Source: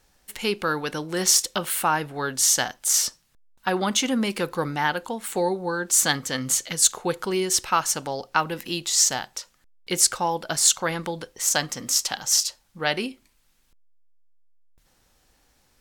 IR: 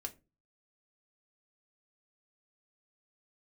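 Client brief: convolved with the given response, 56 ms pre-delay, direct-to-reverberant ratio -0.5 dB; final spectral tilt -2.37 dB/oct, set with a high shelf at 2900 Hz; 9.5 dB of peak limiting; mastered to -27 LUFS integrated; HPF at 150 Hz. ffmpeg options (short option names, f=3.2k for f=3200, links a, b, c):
-filter_complex "[0:a]highpass=150,highshelf=f=2.9k:g=-7,alimiter=limit=-15.5dB:level=0:latency=1,asplit=2[a][b];[1:a]atrim=start_sample=2205,adelay=56[c];[b][c]afir=irnorm=-1:irlink=0,volume=2.5dB[d];[a][d]amix=inputs=2:normalize=0,volume=-2dB"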